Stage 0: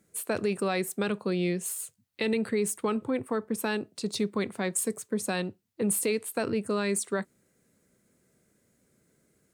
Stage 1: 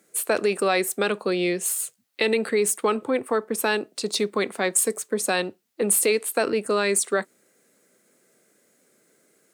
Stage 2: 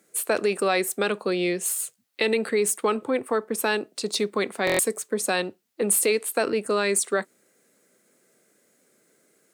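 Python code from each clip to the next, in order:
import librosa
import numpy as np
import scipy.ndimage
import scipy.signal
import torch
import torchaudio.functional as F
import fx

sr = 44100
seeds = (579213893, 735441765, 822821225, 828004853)

y1 = scipy.signal.sosfilt(scipy.signal.butter(2, 350.0, 'highpass', fs=sr, output='sos'), x)
y1 = fx.notch(y1, sr, hz=980.0, q=17.0)
y1 = y1 * 10.0 ** (8.5 / 20.0)
y2 = fx.buffer_glitch(y1, sr, at_s=(4.65,), block=1024, repeats=5)
y2 = y2 * 10.0 ** (-1.0 / 20.0)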